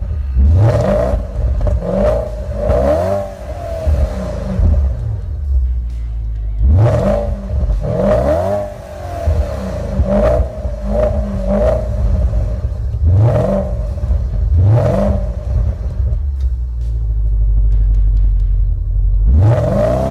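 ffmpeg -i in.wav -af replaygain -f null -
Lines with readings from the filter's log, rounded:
track_gain = -1.4 dB
track_peak = 0.343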